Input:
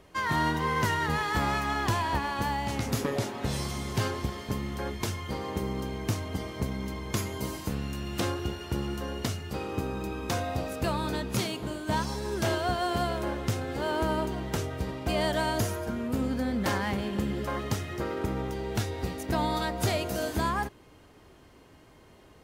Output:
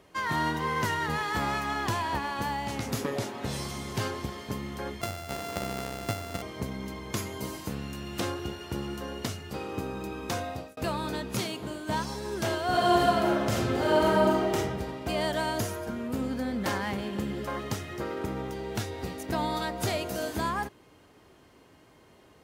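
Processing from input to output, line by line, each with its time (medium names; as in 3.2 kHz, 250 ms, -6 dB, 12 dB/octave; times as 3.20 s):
5.01–6.42 s: sorted samples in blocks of 64 samples
10.33–10.77 s: fade out equal-power
12.66–14.54 s: reverb throw, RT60 1.2 s, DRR -5.5 dB
whole clip: high-pass 110 Hz 6 dB/octave; trim -1 dB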